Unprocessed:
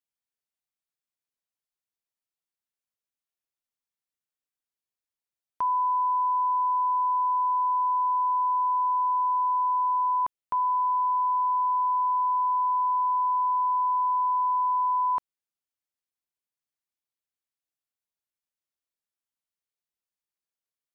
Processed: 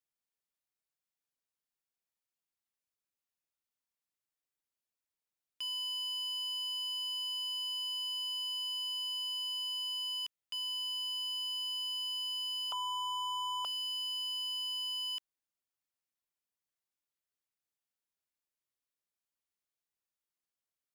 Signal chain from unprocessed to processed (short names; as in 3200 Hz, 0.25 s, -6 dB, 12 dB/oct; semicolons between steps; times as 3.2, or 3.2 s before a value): 12.72–13.65 HPF 1000 Hz 24 dB/oct; wavefolder -29.5 dBFS; gain -2 dB